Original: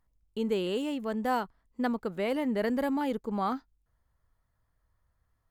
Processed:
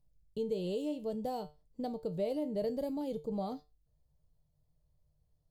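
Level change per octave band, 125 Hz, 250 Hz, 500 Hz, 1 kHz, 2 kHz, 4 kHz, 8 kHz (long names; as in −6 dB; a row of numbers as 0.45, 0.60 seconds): −2.0 dB, −7.0 dB, −3.5 dB, −11.0 dB, −21.5 dB, −9.5 dB, can't be measured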